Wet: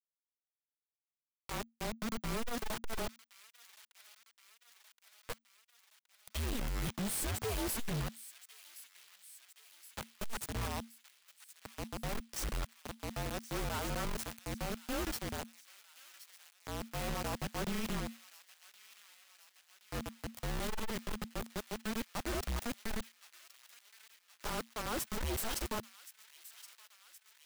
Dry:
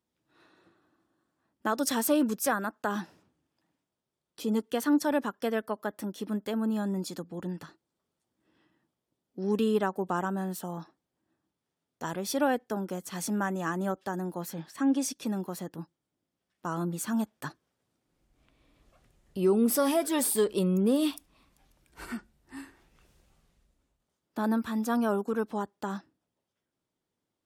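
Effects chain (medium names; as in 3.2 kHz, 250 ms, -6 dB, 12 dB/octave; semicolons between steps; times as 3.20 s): reverse the whole clip; bit crusher 5-bit; frequency shift -230 Hz; overload inside the chain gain 30.5 dB; feedback echo behind a high-pass 1071 ms, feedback 64%, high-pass 2 kHz, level -14 dB; trim -3.5 dB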